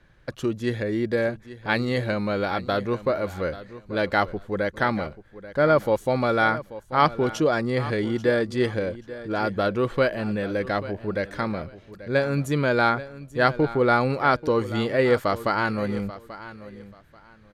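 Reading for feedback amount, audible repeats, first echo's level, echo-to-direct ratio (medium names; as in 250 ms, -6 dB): 23%, 2, -15.5 dB, -15.5 dB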